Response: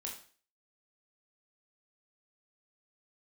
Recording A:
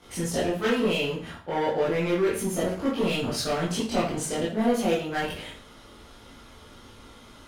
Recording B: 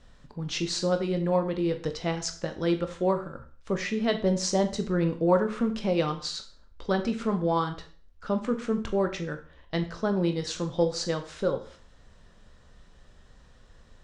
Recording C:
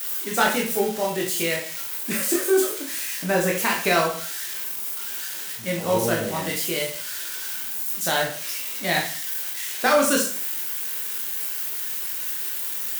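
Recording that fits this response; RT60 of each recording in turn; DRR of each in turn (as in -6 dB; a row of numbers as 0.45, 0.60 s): C; 0.45, 0.45, 0.45 s; -9.0, 6.5, -1.5 dB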